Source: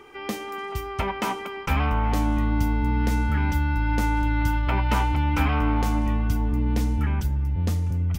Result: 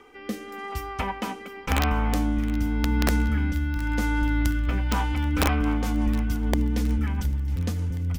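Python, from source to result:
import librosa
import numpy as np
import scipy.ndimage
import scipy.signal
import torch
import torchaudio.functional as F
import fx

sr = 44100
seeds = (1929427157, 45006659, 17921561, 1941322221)

y = fx.hum_notches(x, sr, base_hz=50, count=3)
y = y + 0.45 * np.pad(y, (int(4.0 * sr / 1000.0), 0))[:len(y)]
y = fx.rotary_switch(y, sr, hz=0.9, then_hz=6.7, switch_at_s=4.96)
y = (np.mod(10.0 ** (13.0 / 20.0) * y + 1.0, 2.0) - 1.0) / 10.0 ** (13.0 / 20.0)
y = fx.echo_wet_highpass(y, sr, ms=718, feedback_pct=70, hz=1500.0, wet_db=-17)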